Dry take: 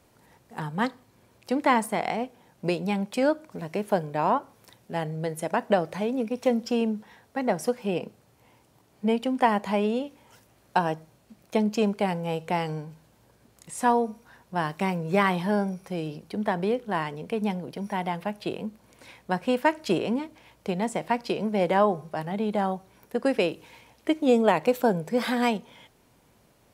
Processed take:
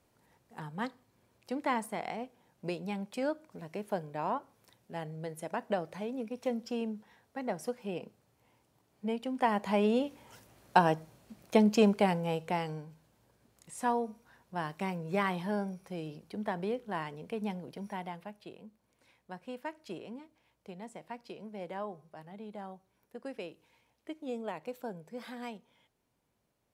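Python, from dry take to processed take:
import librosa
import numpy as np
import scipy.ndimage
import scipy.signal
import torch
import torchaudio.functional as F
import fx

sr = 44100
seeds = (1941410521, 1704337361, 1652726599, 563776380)

y = fx.gain(x, sr, db=fx.line((9.21, -10.0), (10.04, 0.0), (11.92, 0.0), (12.84, -8.5), (17.85, -8.5), (18.52, -18.0)))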